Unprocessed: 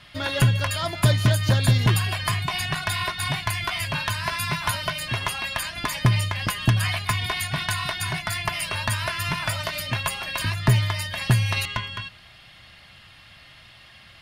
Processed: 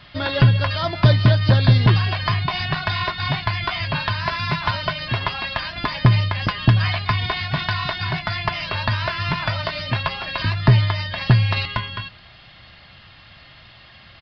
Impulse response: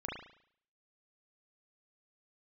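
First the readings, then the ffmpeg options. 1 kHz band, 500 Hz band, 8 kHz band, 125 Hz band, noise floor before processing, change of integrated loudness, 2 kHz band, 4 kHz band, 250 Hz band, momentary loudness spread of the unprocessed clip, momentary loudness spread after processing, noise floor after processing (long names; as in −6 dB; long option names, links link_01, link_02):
+4.0 dB, +5.0 dB, below −20 dB, +5.0 dB, −49 dBFS, +3.5 dB, +2.0 dB, +2.0 dB, +5.0 dB, 7 LU, 9 LU, −47 dBFS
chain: -af "equalizer=frequency=2600:width_type=o:width=1.4:gain=-4,aresample=11025,aresample=44100,volume=5dB"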